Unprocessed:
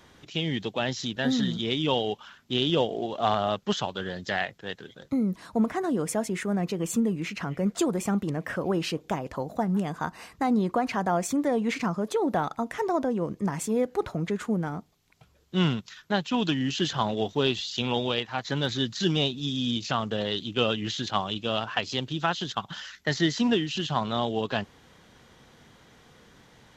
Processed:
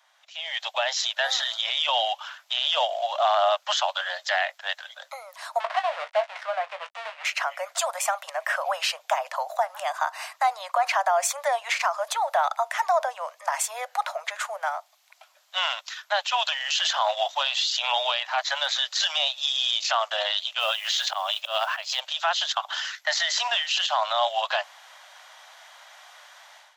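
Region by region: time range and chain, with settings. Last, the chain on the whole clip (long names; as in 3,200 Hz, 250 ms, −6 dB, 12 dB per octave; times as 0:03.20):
0:05.60–0:07.25: gap after every zero crossing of 0.2 ms + low-pass filter 2,800 Hz + double-tracking delay 19 ms −9.5 dB
0:20.59–0:22.00: volume swells 172 ms + noise that follows the level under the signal 29 dB
whole clip: Butterworth high-pass 590 Hz 96 dB per octave; brickwall limiter −23 dBFS; automatic gain control gain up to 16 dB; level −6.5 dB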